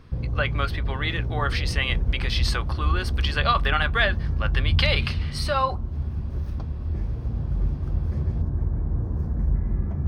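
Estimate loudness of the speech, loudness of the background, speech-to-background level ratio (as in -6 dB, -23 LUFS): -26.5 LUFS, -27.5 LUFS, 1.0 dB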